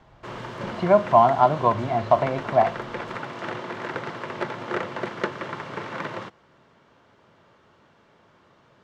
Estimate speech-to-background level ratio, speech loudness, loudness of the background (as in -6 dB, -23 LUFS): 12.5 dB, -20.5 LUFS, -33.0 LUFS